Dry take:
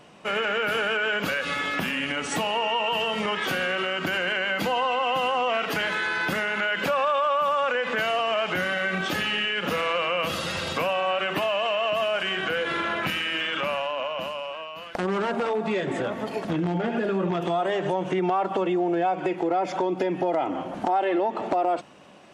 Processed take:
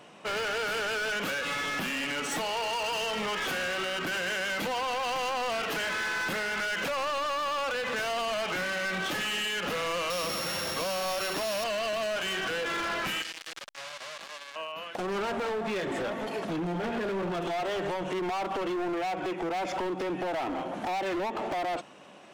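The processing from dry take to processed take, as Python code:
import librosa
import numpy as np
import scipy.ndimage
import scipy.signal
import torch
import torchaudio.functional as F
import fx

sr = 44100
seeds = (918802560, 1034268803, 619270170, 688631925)

y = fx.sample_sort(x, sr, block=8, at=(10.1, 11.64))
y = fx.highpass(y, sr, hz=210.0, slope=6)
y = fx.notch(y, sr, hz=4700.0, q=18.0)
y = np.clip(y, -10.0 ** (-29.0 / 20.0), 10.0 ** (-29.0 / 20.0))
y = fx.transformer_sat(y, sr, knee_hz=3300.0, at=(13.22, 14.56))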